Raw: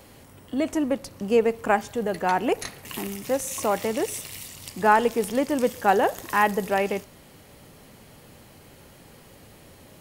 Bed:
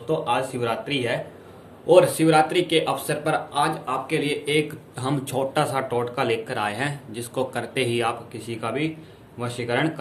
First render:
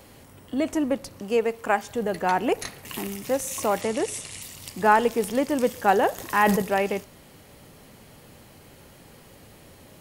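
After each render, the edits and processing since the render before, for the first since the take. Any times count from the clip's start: 1.21–1.89 low shelf 360 Hz -7.5 dB; 3.81–4.42 careless resampling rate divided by 2×, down none, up filtered; 6.18–6.62 sustainer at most 42 dB/s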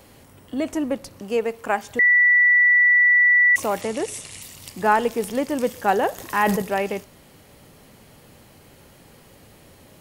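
1.99–3.56 bleep 1960 Hz -12 dBFS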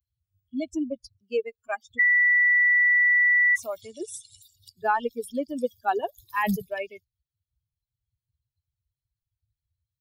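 per-bin expansion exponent 3; compressor, threshold -18 dBFS, peak gain reduction 4 dB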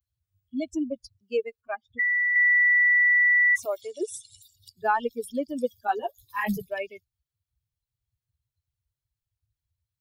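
1.61–2.36 air absorption 460 m; 3.65–4.11 resonant low shelf 280 Hz -12.5 dB, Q 3; 5.87–6.59 ensemble effect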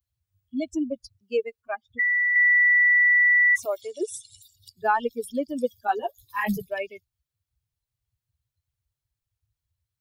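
gain +1.5 dB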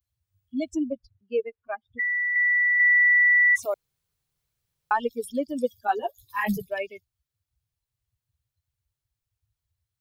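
0.93–2.8 air absorption 350 m; 3.74–4.91 room tone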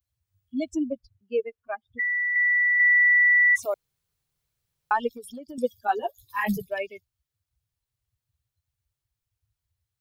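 5.15–5.58 compressor 10:1, threshold -36 dBFS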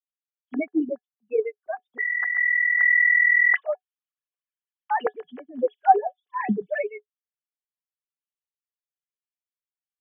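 sine-wave speech; small resonant body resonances 420/740/1700/3000 Hz, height 10 dB, ringing for 80 ms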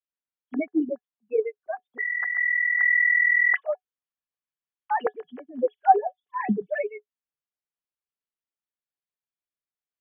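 air absorption 220 m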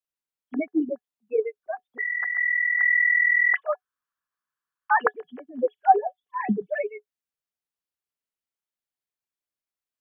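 3.66–5.11 band shelf 1300 Hz +13.5 dB 1 oct

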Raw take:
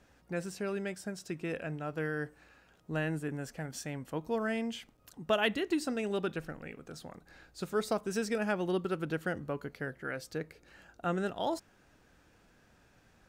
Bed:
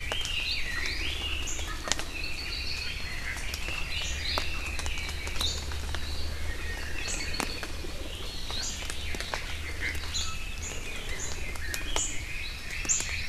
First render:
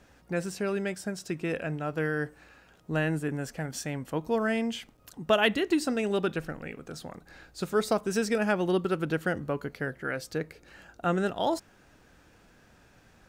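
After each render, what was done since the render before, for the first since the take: gain +5.5 dB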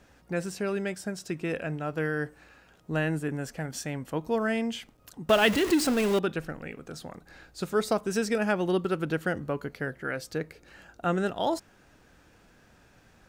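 5.29–6.19 zero-crossing step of -27 dBFS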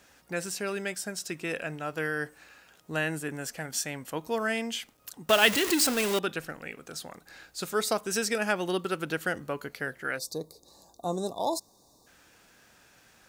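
10.19–12.07 spectral gain 1200–3500 Hz -29 dB; tilt +2.5 dB/oct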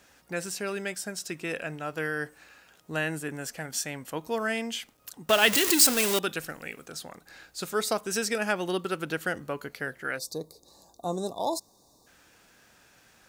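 5.53–6.86 high shelf 4300 Hz +8.5 dB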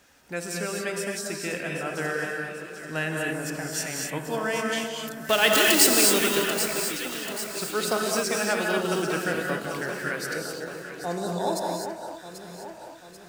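on a send: echo with dull and thin repeats by turns 0.394 s, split 1400 Hz, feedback 71%, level -7 dB; on the sum: non-linear reverb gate 0.28 s rising, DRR 0 dB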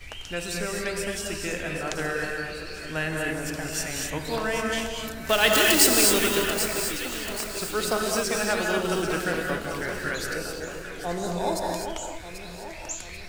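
add bed -8 dB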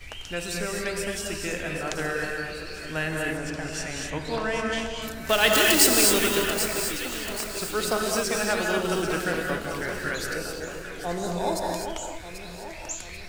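3.37–5.02 air absorption 57 m

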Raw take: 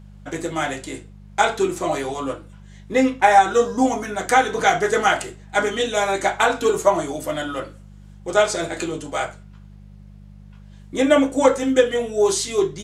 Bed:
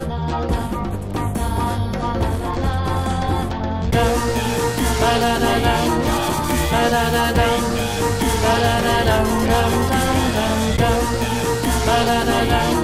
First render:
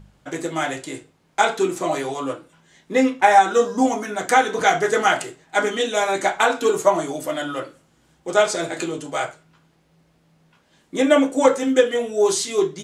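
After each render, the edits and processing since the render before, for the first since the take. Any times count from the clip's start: de-hum 50 Hz, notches 4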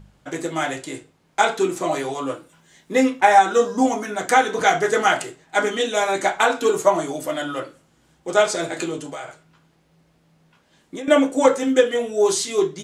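2.32–3.19 high shelf 7200 Hz -> 10000 Hz +9.5 dB; 9.06–11.08 compressor 10:1, threshold -28 dBFS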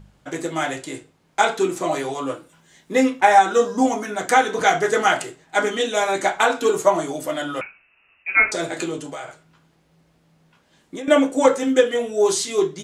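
7.61–8.52 inverted band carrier 2800 Hz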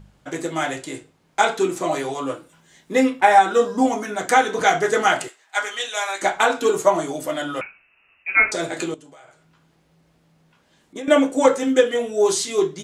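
2.99–3.93 bell 6300 Hz -8 dB 0.27 oct; 5.28–6.22 HPF 980 Hz; 8.94–10.96 compressor 2:1, threshold -55 dBFS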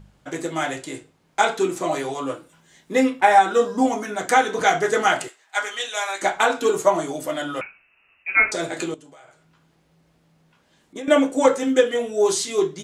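gain -1 dB

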